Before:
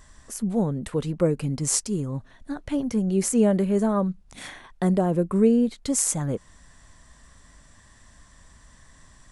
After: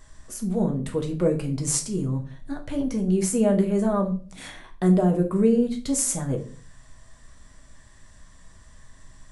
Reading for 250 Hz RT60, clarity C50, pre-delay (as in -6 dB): 0.55 s, 12.5 dB, 5 ms